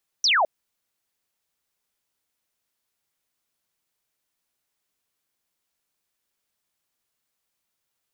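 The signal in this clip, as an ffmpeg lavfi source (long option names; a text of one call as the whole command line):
ffmpeg -f lavfi -i "aevalsrc='0.15*clip(t/0.002,0,1)*clip((0.21-t)/0.002,0,1)*sin(2*PI*6100*0.21/log(570/6100)*(exp(log(570/6100)*t/0.21)-1))':duration=0.21:sample_rate=44100" out.wav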